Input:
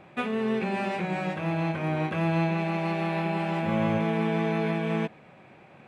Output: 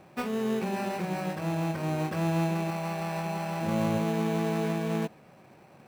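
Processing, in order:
0:02.70–0:03.61: parametric band 290 Hz −13 dB 0.65 octaves
in parallel at −3.5 dB: sample-rate reduction 3,400 Hz, jitter 0%
on the sum: level −6 dB

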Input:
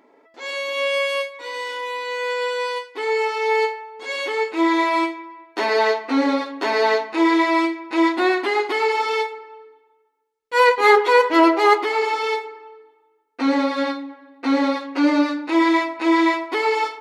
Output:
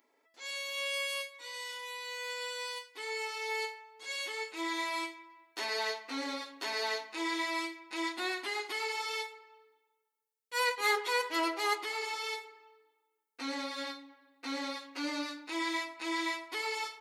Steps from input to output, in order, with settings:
first-order pre-emphasis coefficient 0.9
level −1.5 dB

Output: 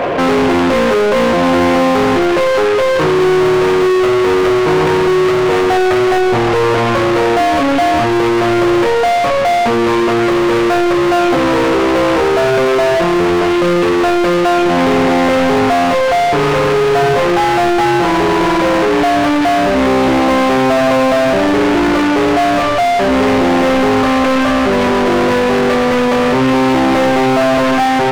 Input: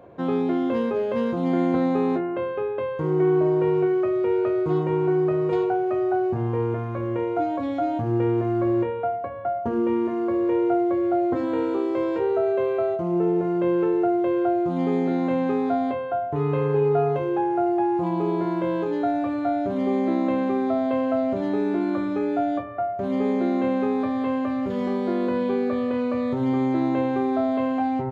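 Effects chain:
variable-slope delta modulation 16 kbit/s
mid-hump overdrive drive 41 dB, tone 2,500 Hz, clips at −12 dBFS
backwards echo 256 ms −18.5 dB
level +6 dB

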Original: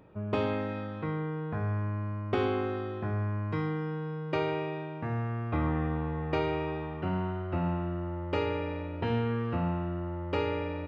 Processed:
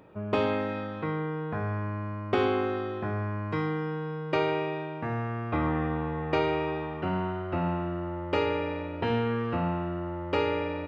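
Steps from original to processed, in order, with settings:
low-shelf EQ 150 Hz −9 dB
level +4.5 dB

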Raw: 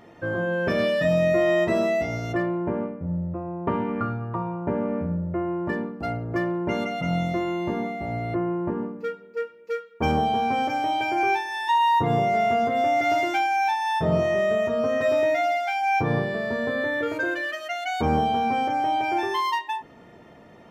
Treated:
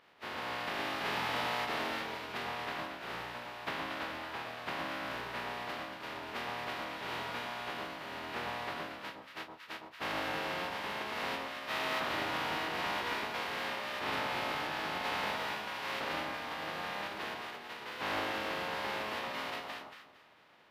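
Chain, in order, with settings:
compressing power law on the bin magnitudes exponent 0.11
high-pass filter 520 Hz 6 dB per octave
phase-vocoder pitch shift with formants kept −6.5 semitones
high-frequency loss of the air 370 metres
on a send: delay that swaps between a low-pass and a high-pass 115 ms, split 1,100 Hz, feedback 51%, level −2 dB
on the sum: level −4.5 dB

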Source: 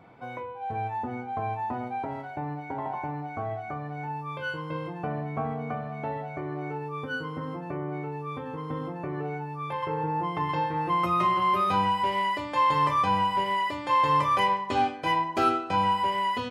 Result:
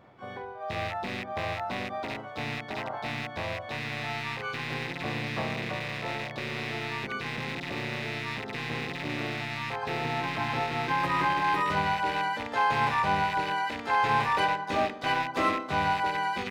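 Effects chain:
loose part that buzzes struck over −39 dBFS, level −21 dBFS
pitch-shifted copies added −4 semitones 0 dB, +7 semitones −6 dB, +12 semitones −16 dB
level −6 dB

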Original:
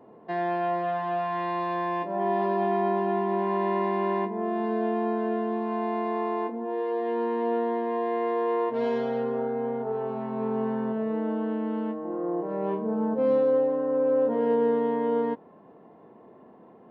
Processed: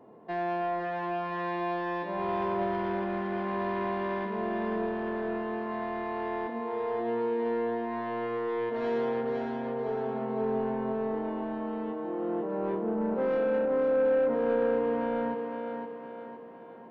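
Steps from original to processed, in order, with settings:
soft clipping −22 dBFS, distortion −16 dB
feedback echo with a high-pass in the loop 512 ms, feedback 50%, high-pass 190 Hz, level −4.5 dB
level −2 dB

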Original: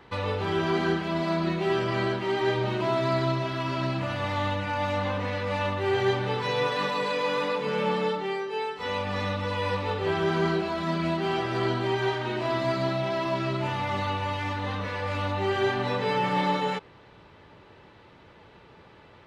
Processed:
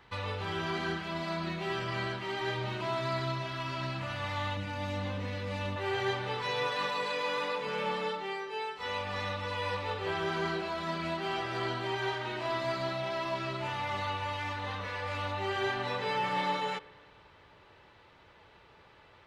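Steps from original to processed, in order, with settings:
parametric band 330 Hz −8.5 dB 2.5 octaves, from 0:04.57 970 Hz, from 0:05.76 210 Hz
spring reverb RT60 2.2 s, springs 44/48 ms, chirp 50 ms, DRR 18.5 dB
level −3 dB

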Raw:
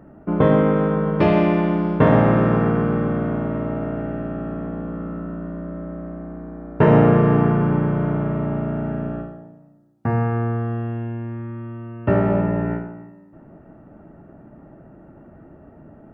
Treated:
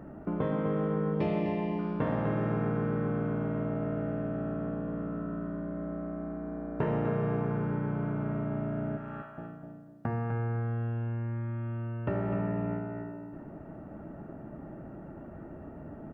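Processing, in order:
0:08.97–0:09.38: high-pass filter 920 Hz 24 dB per octave
downward compressor 2.5 to 1, threshold −36 dBFS, peak gain reduction 17.5 dB
0:01.14–0:01.79: Butterworth band-reject 1,400 Hz, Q 2.2
repeating echo 251 ms, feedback 25%, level −7.5 dB

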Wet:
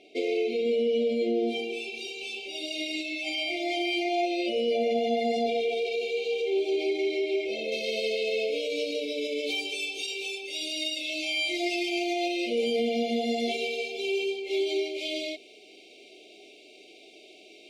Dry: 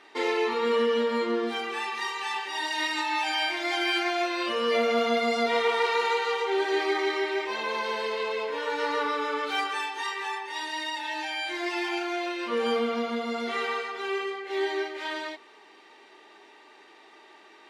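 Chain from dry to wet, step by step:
high-shelf EQ 2,800 Hz −8.5 dB, from 0:07.72 +2.5 dB
brickwall limiter −22.5 dBFS, peak gain reduction 7.5 dB
linear-phase brick-wall band-stop 760–2,100 Hz
level +4 dB

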